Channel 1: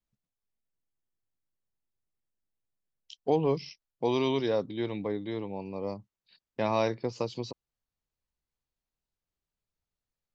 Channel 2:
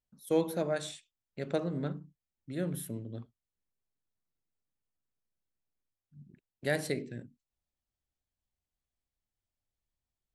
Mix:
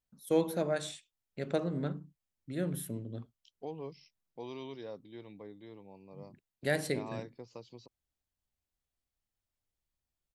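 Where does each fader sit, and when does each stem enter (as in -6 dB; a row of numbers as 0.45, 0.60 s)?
-16.0, 0.0 dB; 0.35, 0.00 s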